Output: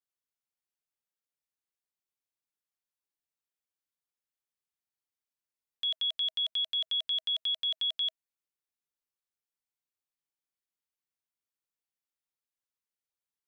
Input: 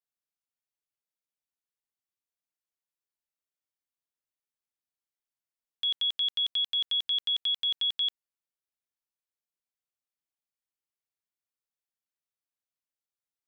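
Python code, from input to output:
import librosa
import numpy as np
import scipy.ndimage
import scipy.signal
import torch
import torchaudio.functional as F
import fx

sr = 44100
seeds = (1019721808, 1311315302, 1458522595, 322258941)

y = fx.notch(x, sr, hz=640.0, q=16.0)
y = y * librosa.db_to_amplitude(-2.5)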